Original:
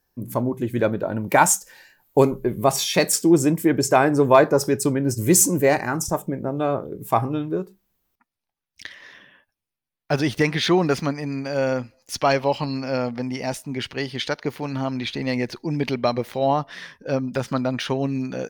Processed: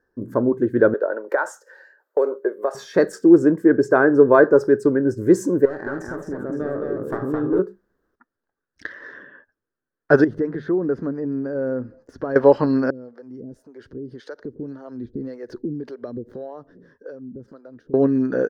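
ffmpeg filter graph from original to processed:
-filter_complex "[0:a]asettb=1/sr,asplit=3[a][b][c];[a]atrim=end=0.944[d];[b]atrim=start=0.94:end=2.75,asetpts=PTS-STARTPTS,afade=t=in:d=0.004:c=qsin,afade=t=out:st=1.806:d=0.004:c=qsin,highpass=f=430:w=0.5412,highpass=f=430:w=1.3066,equalizer=f=570:t=o:w=0.43:g=4.5,acompressor=threshold=-18dB:ratio=6:attack=3.2:release=140:knee=1:detection=peak[e];[c]atrim=start=2.746[f];[d][e]acrossfade=d=0.004:c1=hsin:c2=qsin[g];[g][f]acrossfade=d=0.004:c1=qsin:c2=hsin,asettb=1/sr,asplit=3[h][i][j];[h]atrim=end=5.654[k];[i]atrim=start=5.65:end=7.59,asetpts=PTS-STARTPTS,afade=t=in:d=0.004:c=qsin,afade=t=out:st=1.936:d=0.004:c=qsin,aeval=exprs='clip(val(0),-1,0.0668)':c=same,acompressor=threshold=-27dB:ratio=6:attack=3.2:release=140:knee=1:detection=peak,aecho=1:1:54|215|518:0.299|0.631|0.211,atrim=end_sample=85554[l];[j]atrim=start=7.586[m];[k][l]acrossfade=d=0.004:c1=hsin:c2=qsin[n];[n][m]acrossfade=d=0.004:c1=qsin:c2=hsin,asettb=1/sr,asplit=3[o][p][q];[o]atrim=end=10.244[r];[p]atrim=start=10.24:end=12.36,asetpts=PTS-STARTPTS,afade=t=in:d=0.004:c=qsin,afade=t=out:st=2.116:d=0.004:c=qsin,bandreject=f=50:t=h:w=6,bandreject=f=100:t=h:w=6,bandreject=f=150:t=h:w=6,bandreject=f=200:t=h:w=6,acompressor=threshold=-40dB:ratio=2.5:attack=3.2:release=140:knee=1:detection=peak,tiltshelf=f=710:g=7.5[s];[q]atrim=start=12.356[t];[r][s]acrossfade=d=0.004:c1=hsin:c2=qsin[u];[u][t]acrossfade=d=0.004:c1=qsin:c2=hsin,asettb=1/sr,asplit=3[v][w][x];[v]atrim=end=12.904[y];[w]atrim=start=12.9:end=17.94,asetpts=PTS-STARTPTS,afade=t=in:d=0.004:c=qsin,afade=t=out:st=5.036:d=0.004:c=qsin,equalizer=f=1.5k:w=0.5:g=-14,acompressor=threshold=-36dB:ratio=10:attack=3.2:release=140:knee=1:detection=peak,acrossover=split=430[z][aa];[z]aeval=exprs='val(0)*(1-1/2+1/2*cos(2*PI*1.8*n/s))':c=same[ab];[aa]aeval=exprs='val(0)*(1-1/2-1/2*cos(2*PI*1.8*n/s))':c=same[ac];[ab][ac]amix=inputs=2:normalize=0[ad];[x]atrim=start=17.936[ae];[y][ad]acrossfade=d=0.004:c1=hsin:c2=qsin[af];[af][ae]acrossfade=d=0.004:c1=qsin:c2=hsin,firequalizer=gain_entry='entry(170,0);entry(260,8);entry(440,13);entry(760,-1);entry(1600,12);entry(2300,-15);entry(4700,-10);entry(11000,-21)':delay=0.05:min_phase=1,dynaudnorm=f=130:g=31:m=11.5dB,volume=-1dB"

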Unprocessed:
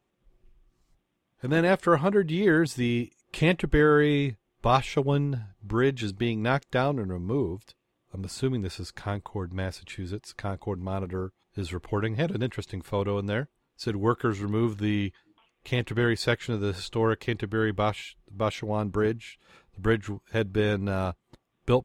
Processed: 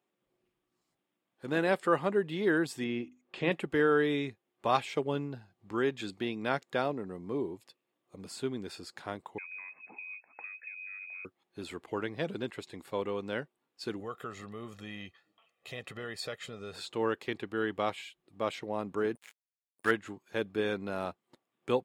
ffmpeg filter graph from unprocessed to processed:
-filter_complex "[0:a]asettb=1/sr,asplit=3[a][b][c];[a]atrim=end=2.844[d];[b]atrim=start=2.84:end=3.52,asetpts=PTS-STARTPTS,afade=t=in:d=0.004:c=qsin,afade=t=out:st=0.676:d=0.004:c=qsin,lowpass=6k,aemphasis=mode=reproduction:type=50fm,bandreject=f=50:t=h:w=6,bandreject=f=100:t=h:w=6,bandreject=f=150:t=h:w=6,bandreject=f=200:t=h:w=6,bandreject=f=250:t=h:w=6,bandreject=f=300:t=h:w=6,bandreject=f=350:t=h:w=6[e];[c]atrim=start=3.516[f];[d][e]acrossfade=d=0.004:c1=hsin:c2=qsin[g];[g][f]acrossfade=d=0.004:c1=qsin:c2=hsin,asettb=1/sr,asplit=3[h][i][j];[h]atrim=end=9.384[k];[i]atrim=start=9.38:end=11.25,asetpts=PTS-STARTPTS,afade=t=in:d=0.004:c=qsin,afade=t=out:st=1.866:d=0.004:c=qsin,asubboost=boost=8:cutoff=190,acompressor=threshold=-35dB:ratio=16:attack=3.2:release=140:knee=1:detection=peak,lowpass=f=2.2k:t=q:w=0.5098,lowpass=f=2.2k:t=q:w=0.6013,lowpass=f=2.2k:t=q:w=0.9,lowpass=f=2.2k:t=q:w=2.563,afreqshift=-2600[l];[j]atrim=start=11.246[m];[k][l]acrossfade=d=0.004:c1=hsin:c2=qsin[n];[n][m]acrossfade=d=0.004:c1=qsin:c2=hsin,asettb=1/sr,asplit=3[o][p][q];[o]atrim=end=14.004[r];[p]atrim=start=14:end=16.76,asetpts=PTS-STARTPTS,afade=t=in:d=0.004:c=qsin,afade=t=out:st=2.756:d=0.004:c=qsin,aecho=1:1:1.6:0.67,atrim=end_sample=121716,acompressor=threshold=-29dB:ratio=4:attack=3.2:release=140:knee=1:detection=peak[s];[q]atrim=start=16.756[t];[r][s]acrossfade=d=0.004:c1=hsin:c2=qsin[u];[u][t]acrossfade=d=0.004:c1=qsin:c2=hsin,asettb=1/sr,asplit=3[v][w][x];[v]atrim=end=19.154[y];[w]atrim=start=19.15:end=19.91,asetpts=PTS-STARTPTS,afade=t=in:d=0.004:c=qsin,afade=t=out:st=0.756:d=0.004:c=qsin,equalizer=f=1.7k:w=1.3:g=12.5,aeval=exprs='val(0)+0.00316*sin(2*PI*9400*n/s)':c=same,aeval=exprs='sgn(val(0))*max(abs(val(0))-0.02,0)':c=same[z];[x]atrim=start=19.906[aa];[y][z]acrossfade=d=0.004:c1=hsin:c2=qsin[ab];[ab][aa]acrossfade=d=0.004:c1=qsin:c2=hsin,highpass=230,bandreject=f=6k:w=13,volume=-5dB"

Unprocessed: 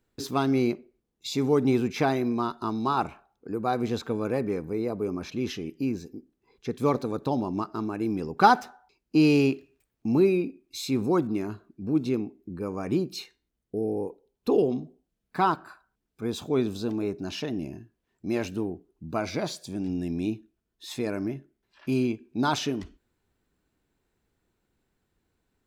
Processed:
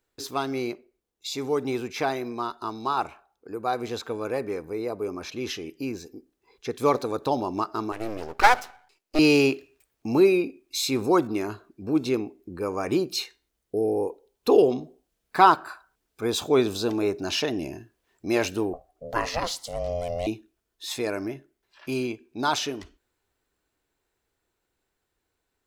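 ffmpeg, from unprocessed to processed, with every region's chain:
-filter_complex "[0:a]asettb=1/sr,asplit=3[a][b][c];[a]atrim=end=7.924[d];[b]atrim=start=7.92:end=9.19,asetpts=PTS-STARTPTS,afade=t=in:d=0.004:c=qsin,afade=t=out:st=1.266:d=0.004:c=qsin,highpass=220,aeval=exprs='max(val(0),0)':c=same[e];[c]atrim=start=9.186[f];[d][e]acrossfade=d=0.004:c1=hsin:c2=qsin[g];[g][f]acrossfade=d=0.004:c1=qsin:c2=hsin,asettb=1/sr,asplit=3[h][i][j];[h]atrim=end=18.734[k];[i]atrim=start=18.73:end=20.27,asetpts=PTS-STARTPTS,afade=t=in:d=0.004:c=qsin,afade=t=out:st=1.536:d=0.004:c=qsin,bandreject=f=570:w=6,aeval=exprs='val(0)*sin(2*PI*350*n/s)':c=same[l];[j]atrim=start=20.266[m];[k][l]acrossfade=d=0.004:c1=hsin:c2=qsin[n];[n][m]acrossfade=d=0.004:c1=qsin:c2=hsin,bass=f=250:g=-6,treble=f=4k:g=2,dynaudnorm=f=700:g=17:m=11.5dB,equalizer=f=200:w=1.1:g=-7.5"

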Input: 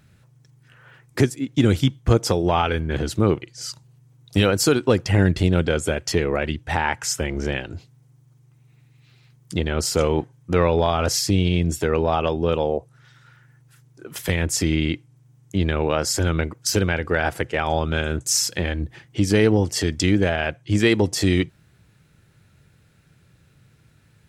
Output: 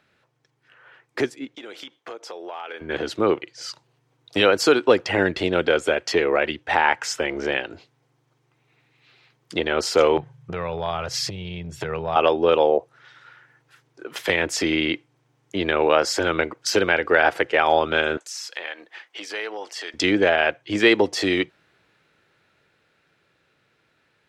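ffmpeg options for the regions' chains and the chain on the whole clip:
-filter_complex "[0:a]asettb=1/sr,asplit=3[a][b][c];[a]atrim=end=1.554[d];[b]atrim=start=1.55:end=2.81,asetpts=PTS-STARTPTS,afade=t=in:d=0.004:c=qsin,afade=t=out:st=1.256:d=0.004:c=qsin,highpass=430,acompressor=threshold=-31dB:ratio=10:attack=3.2:release=140:knee=1:detection=peak,asoftclip=type=hard:threshold=-25dB[e];[c]atrim=start=2.806[f];[d][e]acrossfade=d=0.004:c1=hsin:c2=qsin[g];[g][f]acrossfade=d=0.004:c1=qsin:c2=hsin,asettb=1/sr,asplit=3[h][i][j];[h]atrim=end=10.174[k];[i]atrim=start=10.17:end=12.16,asetpts=PTS-STARTPTS,afade=t=in:d=0.004:c=qsin,afade=t=out:st=1.986:d=0.004:c=qsin,lowshelf=f=200:t=q:w=3:g=11.5,acompressor=threshold=-20dB:ratio=6:attack=3.2:release=140:knee=1:detection=peak[l];[j]atrim=start=12.156[m];[k][l]acrossfade=d=0.004:c1=hsin:c2=qsin[n];[n][m]acrossfade=d=0.004:c1=qsin:c2=hsin,asettb=1/sr,asplit=3[o][p][q];[o]atrim=end=18.174[r];[p]atrim=start=18.17:end=19.94,asetpts=PTS-STARTPTS,afade=t=in:d=0.004:c=qsin,afade=t=out:st=1.766:d=0.004:c=qsin,highpass=750,acompressor=threshold=-37dB:ratio=2:attack=3.2:release=140:knee=1:detection=peak[s];[q]atrim=start=19.936[t];[r][s]acrossfade=d=0.004:c1=hsin:c2=qsin[u];[u][t]acrossfade=d=0.004:c1=qsin:c2=hsin,acrossover=split=310 4800:gain=0.0794 1 0.158[v][w][x];[v][w][x]amix=inputs=3:normalize=0,dynaudnorm=f=180:g=31:m=7dB"

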